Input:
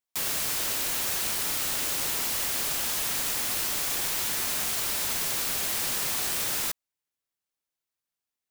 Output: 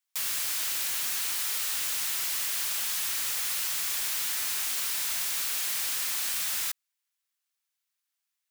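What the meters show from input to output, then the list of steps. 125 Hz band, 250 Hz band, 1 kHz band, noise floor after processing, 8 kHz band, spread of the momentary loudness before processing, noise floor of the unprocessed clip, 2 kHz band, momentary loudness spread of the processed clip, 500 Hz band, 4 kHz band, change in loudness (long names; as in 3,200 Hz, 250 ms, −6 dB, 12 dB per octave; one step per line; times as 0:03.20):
below −10 dB, below −10 dB, −6.0 dB, −84 dBFS, −1.0 dB, 0 LU, below −85 dBFS, −2.0 dB, 0 LU, −12.5 dB, −1.5 dB, −1.5 dB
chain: high-pass filter 1,300 Hz 12 dB per octave
in parallel at +1 dB: brickwall limiter −26.5 dBFS, peak gain reduction 10 dB
on the sum: soft clipping −24 dBFS, distortion −13 dB
level −1.5 dB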